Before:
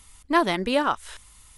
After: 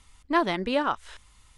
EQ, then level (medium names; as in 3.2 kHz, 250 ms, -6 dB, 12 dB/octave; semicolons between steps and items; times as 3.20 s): distance through air 68 m; -2.5 dB